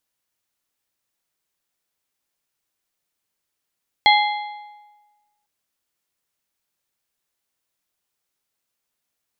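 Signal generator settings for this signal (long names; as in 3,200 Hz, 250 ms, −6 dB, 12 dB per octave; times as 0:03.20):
struck metal plate, length 1.40 s, lowest mode 834 Hz, modes 4, decay 1.29 s, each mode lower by 2.5 dB, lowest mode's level −11 dB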